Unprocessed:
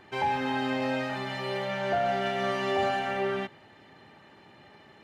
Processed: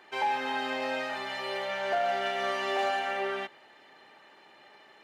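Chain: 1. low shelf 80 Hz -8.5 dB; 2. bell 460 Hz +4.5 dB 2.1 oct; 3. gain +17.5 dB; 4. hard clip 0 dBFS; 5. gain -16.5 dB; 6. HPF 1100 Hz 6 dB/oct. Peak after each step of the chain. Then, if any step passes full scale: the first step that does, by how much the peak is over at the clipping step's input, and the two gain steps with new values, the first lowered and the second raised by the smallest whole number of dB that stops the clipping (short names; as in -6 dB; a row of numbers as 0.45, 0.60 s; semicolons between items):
-16.5, -13.0, +4.5, 0.0, -16.5, -19.0 dBFS; step 3, 4.5 dB; step 3 +12.5 dB, step 5 -11.5 dB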